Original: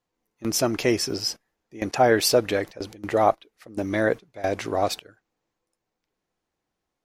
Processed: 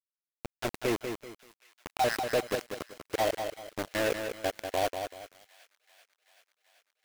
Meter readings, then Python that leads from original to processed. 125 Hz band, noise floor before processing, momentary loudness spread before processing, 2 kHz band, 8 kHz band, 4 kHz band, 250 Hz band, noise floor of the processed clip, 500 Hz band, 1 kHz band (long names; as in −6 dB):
−11.0 dB, −83 dBFS, 14 LU, −6.0 dB, −12.5 dB, −9.5 dB, −11.0 dB, below −85 dBFS, −8.5 dB, −7.5 dB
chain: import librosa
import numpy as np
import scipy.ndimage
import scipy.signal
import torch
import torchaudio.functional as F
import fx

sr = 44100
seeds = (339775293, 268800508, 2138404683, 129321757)

y = fx.spec_dropout(x, sr, seeds[0], share_pct=21)
y = fx.notch(y, sr, hz=1200.0, q=7.4)
y = 10.0 ** (-21.0 / 20.0) * np.tanh(y / 10.0 ** (-21.0 / 20.0))
y = scipy.signal.sosfilt(scipy.signal.cheby1(6, 3, 2600.0, 'lowpass', fs=sr, output='sos'), y)
y = np.where(np.abs(y) >= 10.0 ** (-26.0 / 20.0), y, 0.0)
y = fx.echo_wet_highpass(y, sr, ms=385, feedback_pct=75, hz=1600.0, wet_db=-21)
y = fx.echo_crushed(y, sr, ms=192, feedback_pct=35, bits=8, wet_db=-6.5)